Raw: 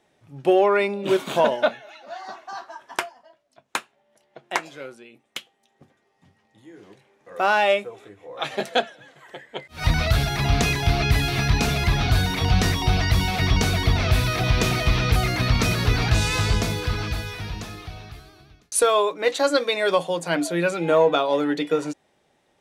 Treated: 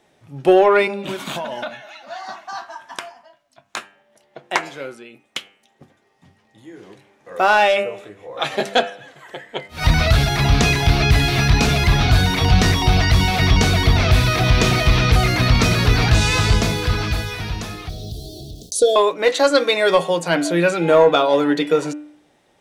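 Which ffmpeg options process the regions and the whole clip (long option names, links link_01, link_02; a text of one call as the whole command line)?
ffmpeg -i in.wav -filter_complex "[0:a]asettb=1/sr,asplit=3[link_01][link_02][link_03];[link_01]atrim=end=0.874[link_04];[link_02]atrim=start=0.87:end=3.77,asetpts=PTS-STARTPTS,afade=type=in:duration=0.004:curve=qsin,afade=type=out:start_time=2.896:duration=0.004:curve=qsin,equalizer=frequency=430:width_type=o:width=0.76:gain=-10.5,acompressor=threshold=-28dB:ratio=16:attack=3.2:release=140:knee=1:detection=peak[link_05];[link_03]atrim=start=3.766[link_06];[link_04][link_05]acrossfade=duration=0.004:curve1=hsin:curve2=qsin[link_07];[link_07][link_06]acrossfade=duration=0.004:curve1=qsin:curve2=hsin,asettb=1/sr,asplit=3[link_08][link_09][link_10];[link_08]atrim=end=17.894[link_11];[link_09]atrim=start=17.89:end=18.96,asetpts=PTS-STARTPTS,afade=type=in:duration=0.004:curve=qsin,afade=type=out:start_time=1.066:duration=0.004:curve=qsin,acompressor=mode=upward:threshold=-27dB:ratio=2.5:attack=3.2:release=140:knee=2.83:detection=peak,aeval=exprs='val(0)*gte(abs(val(0)),0.00422)':channel_layout=same,asuperstop=centerf=1500:order=12:qfactor=0.55[link_12];[link_10]atrim=start=18.956[link_13];[link_11][link_12]acrossfade=duration=0.004:curve1=hsin:curve2=qsin[link_14];[link_14][link_13]acrossfade=duration=0.004:curve1=qsin:curve2=hsin,acontrast=56,bandreject=frequency=99.56:width_type=h:width=4,bandreject=frequency=199.12:width_type=h:width=4,bandreject=frequency=298.68:width_type=h:width=4,bandreject=frequency=398.24:width_type=h:width=4,bandreject=frequency=497.8:width_type=h:width=4,bandreject=frequency=597.36:width_type=h:width=4,bandreject=frequency=696.92:width_type=h:width=4,bandreject=frequency=796.48:width_type=h:width=4,bandreject=frequency=896.04:width_type=h:width=4,bandreject=frequency=995.6:width_type=h:width=4,bandreject=frequency=1095.16:width_type=h:width=4,bandreject=frequency=1194.72:width_type=h:width=4,bandreject=frequency=1294.28:width_type=h:width=4,bandreject=frequency=1393.84:width_type=h:width=4,bandreject=frequency=1493.4:width_type=h:width=4,bandreject=frequency=1592.96:width_type=h:width=4,bandreject=frequency=1692.52:width_type=h:width=4,bandreject=frequency=1792.08:width_type=h:width=4,bandreject=frequency=1891.64:width_type=h:width=4,bandreject=frequency=1991.2:width_type=h:width=4,bandreject=frequency=2090.76:width_type=h:width=4,bandreject=frequency=2190.32:width_type=h:width=4,bandreject=frequency=2289.88:width_type=h:width=4,bandreject=frequency=2389.44:width_type=h:width=4,bandreject=frequency=2489:width_type=h:width=4,bandreject=frequency=2588.56:width_type=h:width=4,bandreject=frequency=2688.12:width_type=h:width=4,bandreject=frequency=2787.68:width_type=h:width=4,bandreject=frequency=2887.24:width_type=h:width=4,bandreject=frequency=2986.8:width_type=h:width=4,bandreject=frequency=3086.36:width_type=h:width=4,acrossover=split=8500[link_15][link_16];[link_16]acompressor=threshold=-39dB:ratio=4:attack=1:release=60[link_17];[link_15][link_17]amix=inputs=2:normalize=0" out.wav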